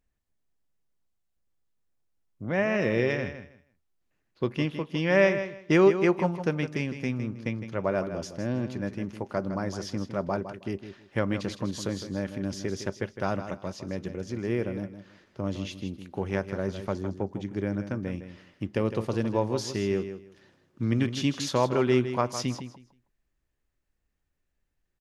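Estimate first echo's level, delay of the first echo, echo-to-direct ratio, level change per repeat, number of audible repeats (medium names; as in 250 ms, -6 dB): -10.5 dB, 159 ms, -10.5 dB, -14.0 dB, 2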